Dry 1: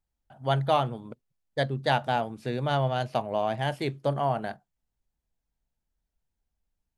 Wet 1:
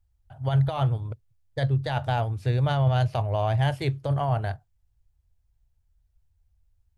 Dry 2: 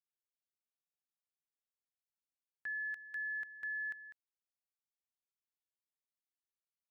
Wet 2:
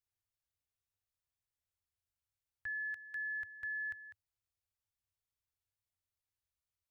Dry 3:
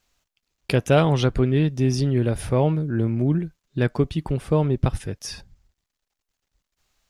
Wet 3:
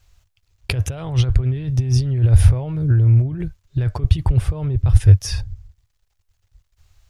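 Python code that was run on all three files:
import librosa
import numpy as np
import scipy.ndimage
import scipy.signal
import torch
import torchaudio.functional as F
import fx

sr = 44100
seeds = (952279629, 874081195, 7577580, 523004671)

y = fx.over_compress(x, sr, threshold_db=-26.0, ratio=-1.0)
y = fx.low_shelf_res(y, sr, hz=140.0, db=13.0, q=3.0)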